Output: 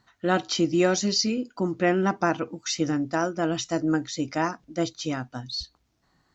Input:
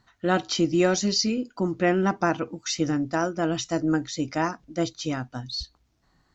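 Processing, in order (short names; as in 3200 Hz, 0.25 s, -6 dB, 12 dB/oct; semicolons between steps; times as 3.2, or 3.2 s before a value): low shelf 62 Hz -10 dB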